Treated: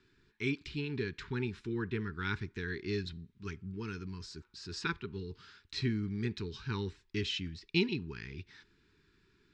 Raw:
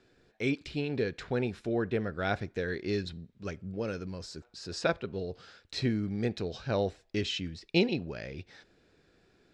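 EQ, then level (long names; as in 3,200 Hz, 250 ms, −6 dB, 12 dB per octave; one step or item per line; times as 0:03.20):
elliptic band-stop filter 420–910 Hz, stop band 40 dB
high-frequency loss of the air 64 metres
parametric band 390 Hz −4 dB 2.6 octaves
0.0 dB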